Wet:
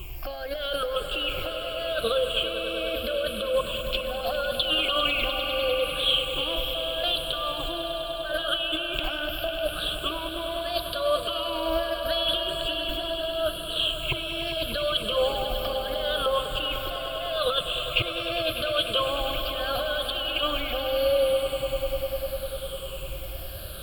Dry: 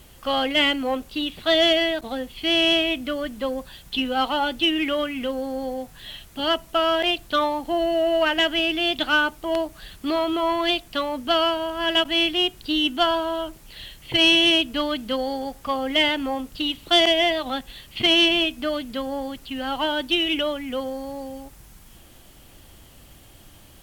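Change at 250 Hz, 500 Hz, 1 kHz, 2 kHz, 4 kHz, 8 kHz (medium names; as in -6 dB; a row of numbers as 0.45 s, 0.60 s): -13.5 dB, -1.5 dB, -5.5 dB, -6.5 dB, -4.0 dB, -1.0 dB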